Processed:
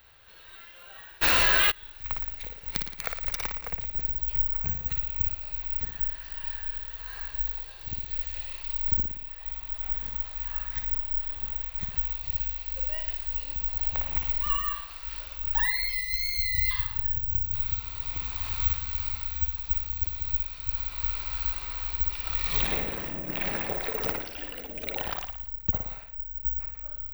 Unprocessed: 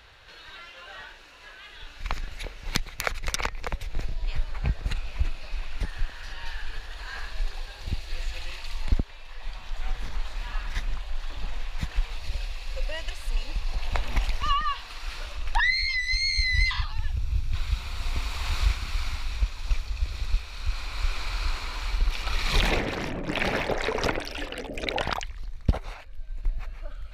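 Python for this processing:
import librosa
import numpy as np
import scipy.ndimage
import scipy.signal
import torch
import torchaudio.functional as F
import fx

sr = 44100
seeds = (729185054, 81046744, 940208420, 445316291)

p1 = (np.kron(x[::2], np.eye(2)[0]) * 2)[:len(x)]
p2 = p1 + fx.room_flutter(p1, sr, wall_m=9.8, rt60_s=0.61, dry=0)
p3 = fx.env_flatten(p2, sr, amount_pct=100, at=(1.21, 1.7), fade=0.02)
y = p3 * librosa.db_to_amplitude(-8.0)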